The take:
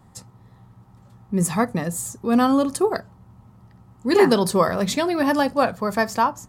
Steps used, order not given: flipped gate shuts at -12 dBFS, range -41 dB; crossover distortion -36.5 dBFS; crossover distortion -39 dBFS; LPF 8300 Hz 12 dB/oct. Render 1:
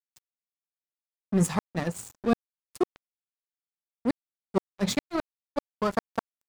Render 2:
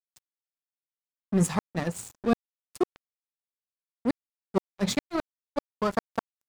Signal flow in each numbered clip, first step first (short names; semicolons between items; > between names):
LPF > second crossover distortion > flipped gate > first crossover distortion; second crossover distortion > LPF > flipped gate > first crossover distortion